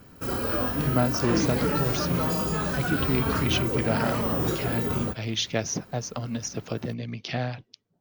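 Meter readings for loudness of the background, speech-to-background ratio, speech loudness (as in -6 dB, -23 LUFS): -26.5 LUFS, -3.5 dB, -30.0 LUFS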